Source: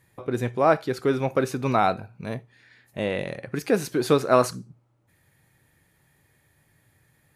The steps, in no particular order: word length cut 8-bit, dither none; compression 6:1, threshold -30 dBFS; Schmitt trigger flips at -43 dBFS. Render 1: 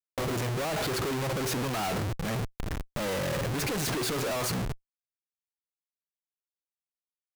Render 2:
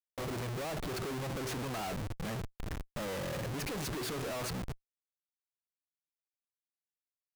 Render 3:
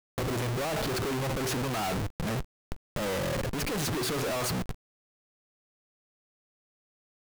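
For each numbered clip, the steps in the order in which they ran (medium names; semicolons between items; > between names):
word length cut > Schmitt trigger > compression; compression > word length cut > Schmitt trigger; Schmitt trigger > compression > word length cut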